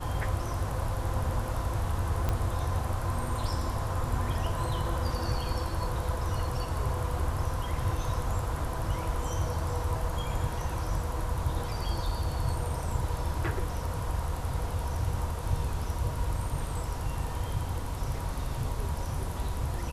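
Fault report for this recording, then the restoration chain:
2.29 s: pop -16 dBFS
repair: de-click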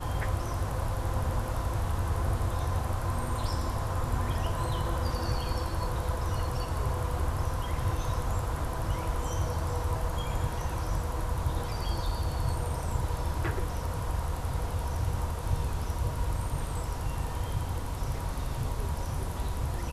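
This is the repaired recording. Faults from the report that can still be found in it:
2.29 s: pop

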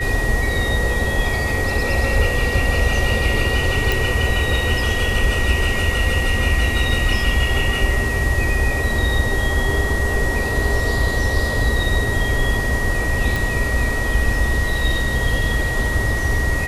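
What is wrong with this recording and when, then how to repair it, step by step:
whine 1.9 kHz -23 dBFS
3.92 s: pop
13.36 s: pop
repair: de-click; band-stop 1.9 kHz, Q 30

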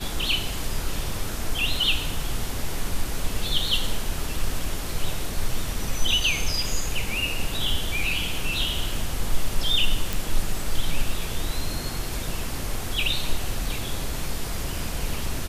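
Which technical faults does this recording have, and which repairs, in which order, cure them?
10.13 s: pop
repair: de-click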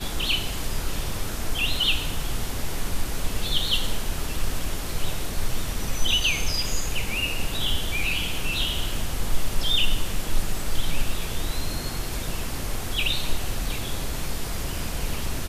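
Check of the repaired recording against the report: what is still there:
nothing left

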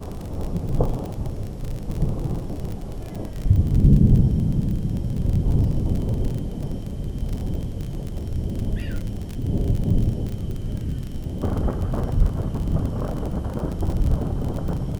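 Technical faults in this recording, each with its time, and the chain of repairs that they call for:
crackle 33 per s -26 dBFS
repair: de-click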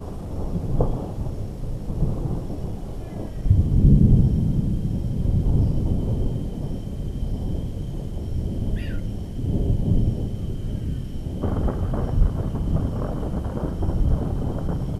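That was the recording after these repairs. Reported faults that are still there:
nothing left

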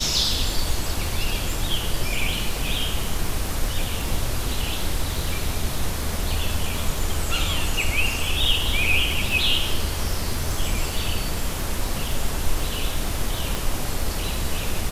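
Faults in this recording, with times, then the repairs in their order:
crackle 27 per s -26 dBFS
13.55 s: pop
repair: de-click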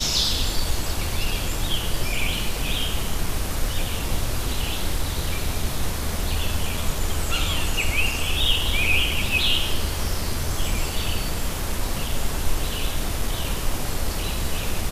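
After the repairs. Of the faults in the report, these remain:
13.55 s: pop

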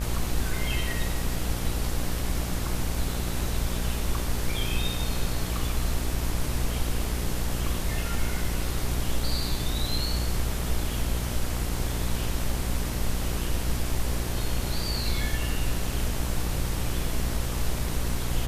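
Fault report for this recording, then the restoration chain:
buzz 60 Hz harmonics 38 -31 dBFS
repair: de-hum 60 Hz, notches 38

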